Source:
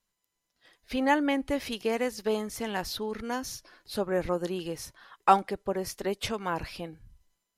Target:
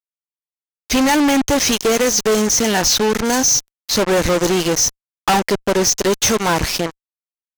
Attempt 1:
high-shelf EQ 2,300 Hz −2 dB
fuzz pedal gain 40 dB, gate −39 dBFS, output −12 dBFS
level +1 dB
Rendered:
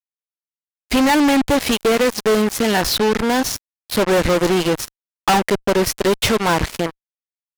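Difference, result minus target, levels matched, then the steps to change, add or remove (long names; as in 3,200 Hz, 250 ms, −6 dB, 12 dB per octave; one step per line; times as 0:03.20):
8,000 Hz band −9.0 dB
add first: low-pass with resonance 6,200 Hz, resonance Q 11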